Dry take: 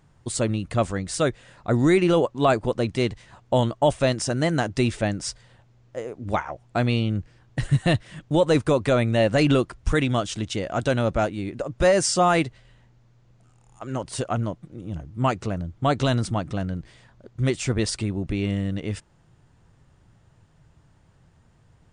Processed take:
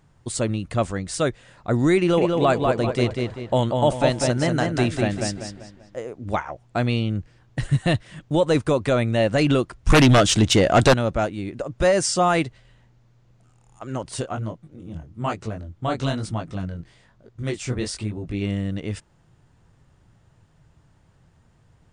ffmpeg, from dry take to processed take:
-filter_complex "[0:a]asettb=1/sr,asplit=3[s0][s1][s2];[s0]atrim=end=1.984[s3];[s1]atrim=start=1.98:end=5.97,asetpts=PTS-STARTPTS,afade=t=in:d=0.004:c=qsin,afade=t=out:st=3.986:d=0.004:c=qsin,asplit=2[s4][s5];[s5]adelay=195,lowpass=f=4300:p=1,volume=0.668,asplit=2[s6][s7];[s7]adelay=195,lowpass=f=4300:p=1,volume=0.4,asplit=2[s8][s9];[s9]adelay=195,lowpass=f=4300:p=1,volume=0.4,asplit=2[s10][s11];[s11]adelay=195,lowpass=f=4300:p=1,volume=0.4,asplit=2[s12][s13];[s13]adelay=195,lowpass=f=4300:p=1,volume=0.4[s14];[s4][s6][s8][s10][s12][s14]amix=inputs=6:normalize=0,atrim=end_sample=175959[s15];[s2]atrim=start=5.966[s16];[s3][s15]acrossfade=d=0.004:c1=hsin:c2=qsin[s17];[s17][s16]acrossfade=d=0.004:c1=qsin:c2=hsin,asettb=1/sr,asplit=3[s18][s19][s20];[s18]atrim=end=9.894[s21];[s19]atrim=start=9.89:end=10.94,asetpts=PTS-STARTPTS,afade=t=in:d=0.004:c=qsin,afade=t=out:st=1.046:d=0.004:c=qsin,aeval=exprs='0.355*sin(PI/2*2.82*val(0)/0.355)':c=same[s22];[s20]atrim=start=10.936[s23];[s21][s22]acrossfade=d=0.004:c1=hsin:c2=qsin[s24];[s24][s23]acrossfade=d=0.004:c1=qsin:c2=hsin,asplit=3[s25][s26][s27];[s25]afade=t=out:st=14.22:d=0.02[s28];[s26]flanger=delay=18:depth=6.3:speed=1.1,afade=t=in:st=14.22:d=0.02,afade=t=out:st=18.4:d=0.02[s29];[s27]afade=t=in:st=18.4:d=0.02[s30];[s28][s29][s30]amix=inputs=3:normalize=0"

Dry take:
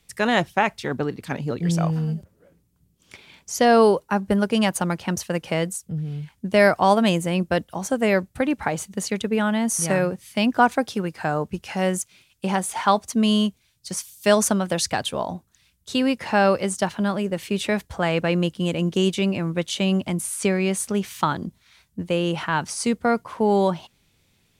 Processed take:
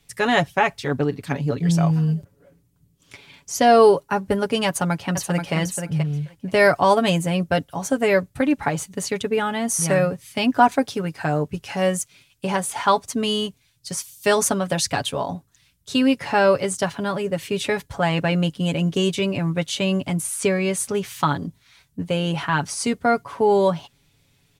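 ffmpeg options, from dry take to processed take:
-filter_complex "[0:a]asplit=2[s0][s1];[s1]afade=t=in:st=4.67:d=0.01,afade=t=out:st=5.54:d=0.01,aecho=0:1:480|960:0.501187|0.0501187[s2];[s0][s2]amix=inputs=2:normalize=0,equalizer=f=72:w=1.3:g=6,aecho=1:1:7.1:0.63"

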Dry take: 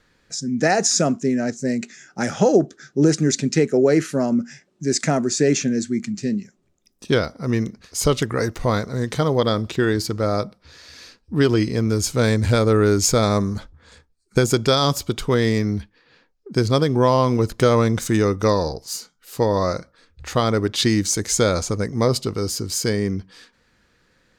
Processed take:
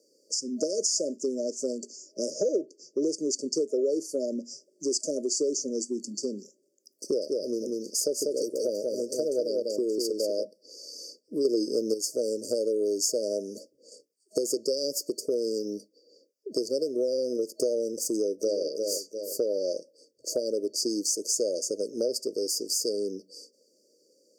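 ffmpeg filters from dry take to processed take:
-filter_complex "[0:a]asettb=1/sr,asplit=3[s0][s1][s2];[s0]atrim=end=1.724[s3];[s1]atrim=start=1.72:end=3.55,asetpts=PTS-STARTPTS,afade=t=in:d=0.004:c=qsin,afade=t=out:st=1.826:d=0.004:c=qsin,highshelf=f=7600:g=-5.5[s4];[s2]atrim=start=3.546[s5];[s3][s4]acrossfade=d=0.004:c1=hsin:c2=qsin[s6];[s6][s5]acrossfade=d=0.004:c1=qsin:c2=hsin,asplit=3[s7][s8][s9];[s7]afade=t=out:st=7.17:d=0.02[s10];[s8]aecho=1:1:194:0.631,afade=t=in:st=7.17:d=0.02,afade=t=out:st=10.43:d=0.02[s11];[s9]afade=t=in:st=10.43:d=0.02[s12];[s10][s11][s12]amix=inputs=3:normalize=0,asplit=2[s13][s14];[s14]afade=t=in:st=18.07:d=0.01,afade=t=out:st=18.63:d=0.01,aecho=0:1:350|700|1050:0.354813|0.106444|0.0319332[s15];[s13][s15]amix=inputs=2:normalize=0,asplit=3[s16][s17][s18];[s16]atrim=end=11.452[s19];[s17]atrim=start=11.448:end=11.942,asetpts=PTS-STARTPTS,volume=2.82[s20];[s18]atrim=start=11.938[s21];[s19][s20]acrossfade=d=0.004:c1=hsin:c2=hsin[s22];[s22][s21]acrossfade=d=0.004:c1=hsin:c2=hsin,highpass=f=350:w=0.5412,highpass=f=350:w=1.3066,afftfilt=real='re*(1-between(b*sr/4096,630,4500))':imag='im*(1-between(b*sr/4096,630,4500))':win_size=4096:overlap=0.75,acompressor=threshold=0.0251:ratio=3,volume=1.58"

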